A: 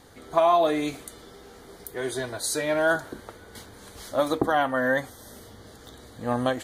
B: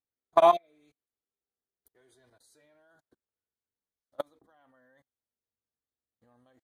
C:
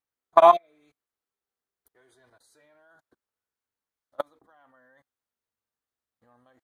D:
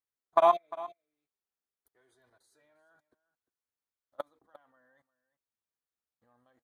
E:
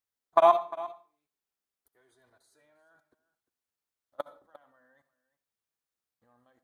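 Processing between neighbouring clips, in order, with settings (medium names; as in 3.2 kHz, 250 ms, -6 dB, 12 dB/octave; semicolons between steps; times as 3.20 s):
level held to a coarse grid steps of 19 dB; spectral replace 0.55–0.83 s, 690–2500 Hz after; upward expansion 2.5:1, over -50 dBFS; trim +3.5 dB
peaking EQ 1.2 kHz +7.5 dB 1.8 oct
delay 351 ms -17.5 dB; trim -7.5 dB
reverberation RT60 0.40 s, pre-delay 58 ms, DRR 14.5 dB; trim +2 dB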